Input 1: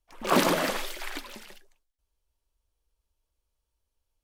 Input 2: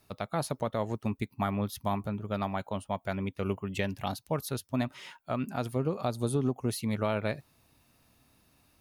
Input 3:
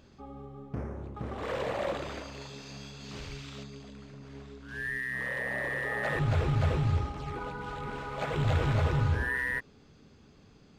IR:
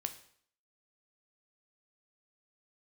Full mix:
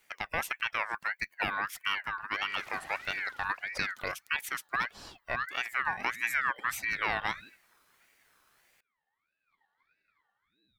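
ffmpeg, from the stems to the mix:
-filter_complex "[0:a]alimiter=limit=-17.5dB:level=0:latency=1:release=55,adelay=2250,volume=-19.5dB[a];[1:a]equalizer=f=67:t=o:w=2.8:g=-14,volume=1.5dB,asplit=2[b][c];[2:a]asplit=3[d][e][f];[d]bandpass=f=530:t=q:w=8,volume=0dB[g];[e]bandpass=f=1.84k:t=q:w=8,volume=-6dB[h];[f]bandpass=f=2.48k:t=q:w=8,volume=-9dB[i];[g][h][i]amix=inputs=3:normalize=0,adelay=1300,volume=-12.5dB[j];[c]apad=whole_len=533142[k];[j][k]sidechaingate=range=-20dB:threshold=-59dB:ratio=16:detection=peak[l];[a][b][l]amix=inputs=3:normalize=0,lowshelf=f=300:g=8,aeval=exprs='val(0)*sin(2*PI*1700*n/s+1700*0.25/1.6*sin(2*PI*1.6*n/s))':c=same"

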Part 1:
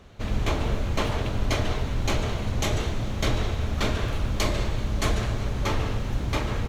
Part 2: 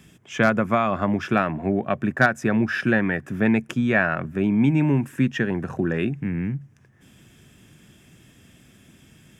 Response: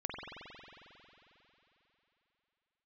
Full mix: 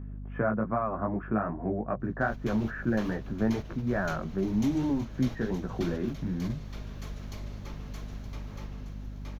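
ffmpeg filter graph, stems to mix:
-filter_complex "[0:a]adelay=2000,volume=-9dB,asplit=2[a][b];[b]volume=-12dB[c];[1:a]lowpass=f=1.4k:w=0.5412,lowpass=f=1.4k:w=1.3066,flanger=delay=15.5:depth=3.4:speed=2.5,aeval=exprs='val(0)+0.0112*(sin(2*PI*50*n/s)+sin(2*PI*2*50*n/s)/2+sin(2*PI*3*50*n/s)/3+sin(2*PI*4*50*n/s)/4+sin(2*PI*5*50*n/s)/5)':c=same,volume=1.5dB,asplit=2[d][e];[e]apad=whole_len=382826[f];[a][f]sidechaingate=range=-11dB:threshold=-25dB:ratio=16:detection=peak[g];[c]aecho=0:1:920|1840|2760|3680:1|0.24|0.0576|0.0138[h];[g][d][h]amix=inputs=3:normalize=0,aexciter=amount=1.2:drive=3.5:freq=4.8k,acompressor=threshold=-36dB:ratio=1.5"

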